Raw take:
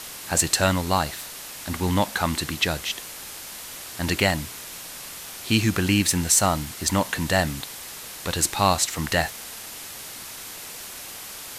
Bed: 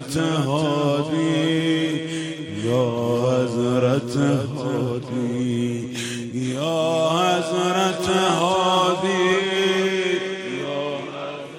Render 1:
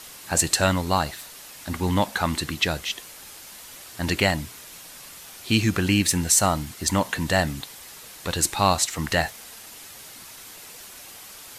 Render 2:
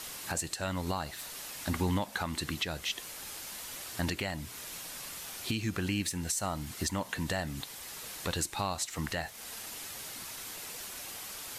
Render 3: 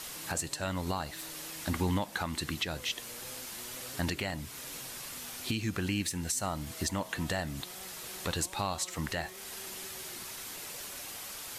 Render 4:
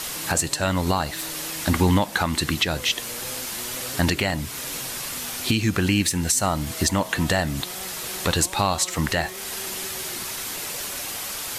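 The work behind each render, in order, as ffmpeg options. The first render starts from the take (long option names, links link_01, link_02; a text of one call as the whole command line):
ffmpeg -i in.wav -af "afftdn=noise_reduction=6:noise_floor=-38" out.wav
ffmpeg -i in.wav -af "acompressor=threshold=-29dB:ratio=2.5,alimiter=limit=-20.5dB:level=0:latency=1:release=455" out.wav
ffmpeg -i in.wav -i bed.wav -filter_complex "[1:a]volume=-33.5dB[link_01];[0:a][link_01]amix=inputs=2:normalize=0" out.wav
ffmpeg -i in.wav -af "volume=11.5dB" out.wav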